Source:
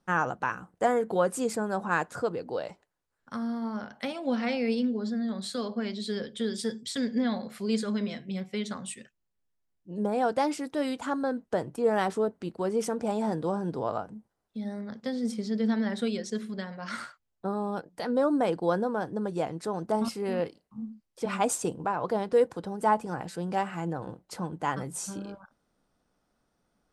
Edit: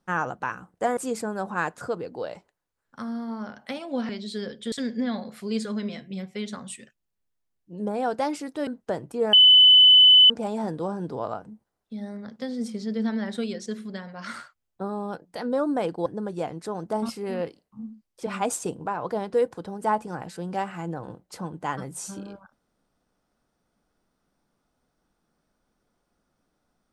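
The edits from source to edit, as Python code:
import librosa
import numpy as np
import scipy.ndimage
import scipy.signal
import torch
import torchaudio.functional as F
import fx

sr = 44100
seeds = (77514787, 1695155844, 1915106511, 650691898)

y = fx.edit(x, sr, fx.cut(start_s=0.97, length_s=0.34),
    fx.cut(start_s=4.43, length_s=1.4),
    fx.cut(start_s=6.46, length_s=0.44),
    fx.cut(start_s=10.85, length_s=0.46),
    fx.bleep(start_s=11.97, length_s=0.97, hz=3010.0, db=-10.0),
    fx.cut(start_s=18.7, length_s=0.35), tone=tone)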